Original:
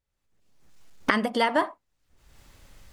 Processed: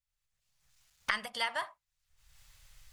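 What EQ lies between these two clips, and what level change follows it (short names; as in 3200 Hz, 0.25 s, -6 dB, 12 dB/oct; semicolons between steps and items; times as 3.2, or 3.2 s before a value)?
passive tone stack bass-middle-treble 10-0-10; bell 130 Hz +8 dB 0.33 oct; -1.5 dB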